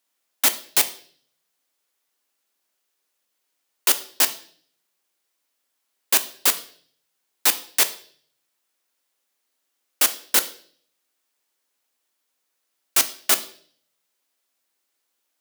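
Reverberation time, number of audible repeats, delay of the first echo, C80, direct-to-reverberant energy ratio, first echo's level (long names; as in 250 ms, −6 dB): 0.50 s, no echo audible, no echo audible, 18.5 dB, 9.0 dB, no echo audible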